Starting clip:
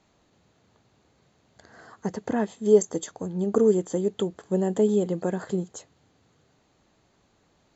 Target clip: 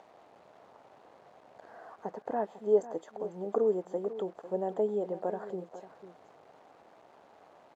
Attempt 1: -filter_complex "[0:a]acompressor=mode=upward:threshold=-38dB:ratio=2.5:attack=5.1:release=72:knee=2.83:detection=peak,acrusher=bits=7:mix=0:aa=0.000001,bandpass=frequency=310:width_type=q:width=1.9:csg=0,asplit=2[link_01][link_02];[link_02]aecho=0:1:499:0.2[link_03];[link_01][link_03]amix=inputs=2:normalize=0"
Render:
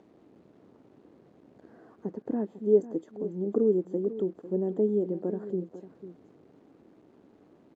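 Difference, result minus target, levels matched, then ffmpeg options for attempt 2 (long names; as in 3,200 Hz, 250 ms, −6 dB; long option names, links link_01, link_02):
1,000 Hz band −15.0 dB
-filter_complex "[0:a]acompressor=mode=upward:threshold=-38dB:ratio=2.5:attack=5.1:release=72:knee=2.83:detection=peak,acrusher=bits=7:mix=0:aa=0.000001,bandpass=frequency=710:width_type=q:width=1.9:csg=0,asplit=2[link_01][link_02];[link_02]aecho=0:1:499:0.2[link_03];[link_01][link_03]amix=inputs=2:normalize=0"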